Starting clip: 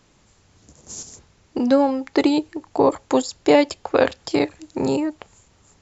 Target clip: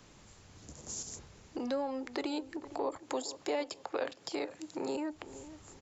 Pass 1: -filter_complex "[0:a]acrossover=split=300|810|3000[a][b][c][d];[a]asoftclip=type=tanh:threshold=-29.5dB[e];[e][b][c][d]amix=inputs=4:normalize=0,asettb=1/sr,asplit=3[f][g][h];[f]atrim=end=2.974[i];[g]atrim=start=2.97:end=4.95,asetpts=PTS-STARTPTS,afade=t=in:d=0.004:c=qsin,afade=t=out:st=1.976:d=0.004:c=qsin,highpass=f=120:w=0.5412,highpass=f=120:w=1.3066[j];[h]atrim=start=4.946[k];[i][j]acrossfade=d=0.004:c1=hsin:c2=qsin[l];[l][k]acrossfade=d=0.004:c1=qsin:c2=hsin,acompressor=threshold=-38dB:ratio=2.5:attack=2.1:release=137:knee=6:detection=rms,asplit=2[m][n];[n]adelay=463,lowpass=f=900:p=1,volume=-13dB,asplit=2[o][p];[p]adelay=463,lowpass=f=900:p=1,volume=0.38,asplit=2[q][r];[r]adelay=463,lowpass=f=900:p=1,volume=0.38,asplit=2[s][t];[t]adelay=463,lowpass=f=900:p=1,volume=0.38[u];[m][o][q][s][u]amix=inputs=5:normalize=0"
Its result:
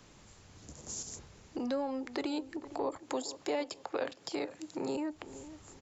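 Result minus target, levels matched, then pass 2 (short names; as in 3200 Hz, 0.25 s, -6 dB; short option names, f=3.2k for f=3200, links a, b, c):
soft clip: distortion -4 dB
-filter_complex "[0:a]acrossover=split=300|810|3000[a][b][c][d];[a]asoftclip=type=tanh:threshold=-38dB[e];[e][b][c][d]amix=inputs=4:normalize=0,asettb=1/sr,asplit=3[f][g][h];[f]atrim=end=2.974[i];[g]atrim=start=2.97:end=4.95,asetpts=PTS-STARTPTS,afade=t=in:d=0.004:c=qsin,afade=t=out:st=1.976:d=0.004:c=qsin,highpass=f=120:w=0.5412,highpass=f=120:w=1.3066[j];[h]atrim=start=4.946[k];[i][j]acrossfade=d=0.004:c1=hsin:c2=qsin[l];[l][k]acrossfade=d=0.004:c1=qsin:c2=hsin,acompressor=threshold=-38dB:ratio=2.5:attack=2.1:release=137:knee=6:detection=rms,asplit=2[m][n];[n]adelay=463,lowpass=f=900:p=1,volume=-13dB,asplit=2[o][p];[p]adelay=463,lowpass=f=900:p=1,volume=0.38,asplit=2[q][r];[r]adelay=463,lowpass=f=900:p=1,volume=0.38,asplit=2[s][t];[t]adelay=463,lowpass=f=900:p=1,volume=0.38[u];[m][o][q][s][u]amix=inputs=5:normalize=0"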